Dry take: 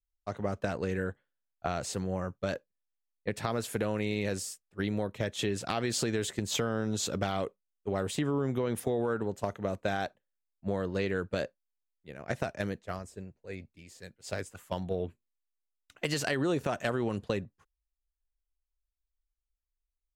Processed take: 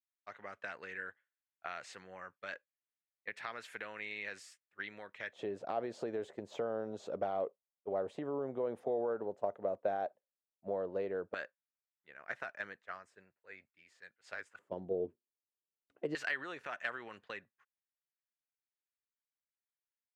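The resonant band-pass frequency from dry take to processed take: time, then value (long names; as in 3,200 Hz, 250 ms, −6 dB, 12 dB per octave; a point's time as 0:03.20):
resonant band-pass, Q 2
1,900 Hz
from 0:05.33 610 Hz
from 0:11.34 1,600 Hz
from 0:14.59 400 Hz
from 0:16.15 1,800 Hz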